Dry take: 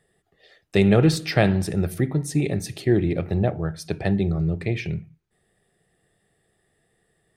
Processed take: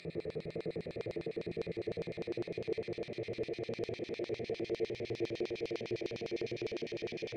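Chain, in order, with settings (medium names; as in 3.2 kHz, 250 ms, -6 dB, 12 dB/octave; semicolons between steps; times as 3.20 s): Paulstretch 34×, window 0.50 s, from 4.56 s; LFO band-pass square 9.9 Hz 490–4600 Hz; trim -2 dB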